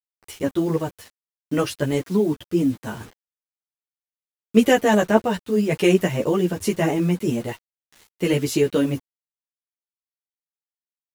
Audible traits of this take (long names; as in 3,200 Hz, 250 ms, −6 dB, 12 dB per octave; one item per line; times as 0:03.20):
tremolo triangle 4.7 Hz, depth 35%
a quantiser's noise floor 8 bits, dither none
a shimmering, thickened sound